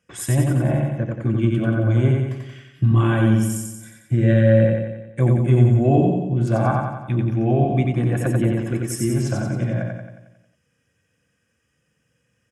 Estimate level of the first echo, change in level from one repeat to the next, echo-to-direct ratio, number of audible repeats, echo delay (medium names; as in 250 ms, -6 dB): -3.0 dB, -5.0 dB, -1.5 dB, 7, 90 ms